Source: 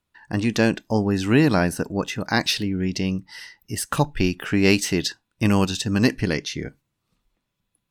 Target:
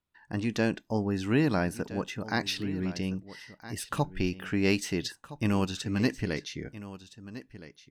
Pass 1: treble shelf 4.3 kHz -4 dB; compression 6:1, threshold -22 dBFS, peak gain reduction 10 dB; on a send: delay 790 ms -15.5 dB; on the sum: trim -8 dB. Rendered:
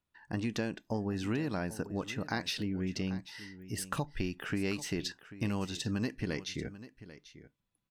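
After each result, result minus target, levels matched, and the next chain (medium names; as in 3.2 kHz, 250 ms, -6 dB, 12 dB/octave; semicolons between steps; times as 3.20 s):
compression: peak gain reduction +10 dB; echo 526 ms early
treble shelf 4.3 kHz -4 dB; on a send: delay 790 ms -15.5 dB; on the sum: trim -8 dB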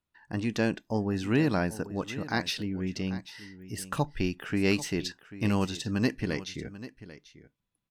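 echo 526 ms early
treble shelf 4.3 kHz -4 dB; on a send: delay 1316 ms -15.5 dB; on the sum: trim -8 dB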